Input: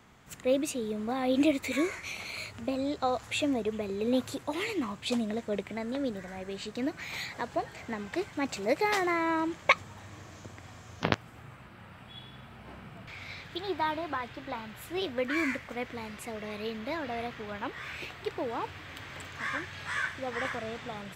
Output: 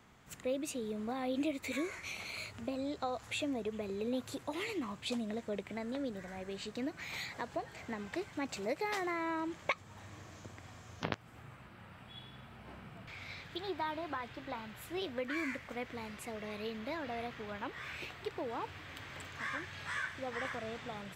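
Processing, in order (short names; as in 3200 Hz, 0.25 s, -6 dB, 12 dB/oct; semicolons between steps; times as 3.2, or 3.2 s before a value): compressor 2:1, threshold -32 dBFS, peak gain reduction 9 dB; gain -4 dB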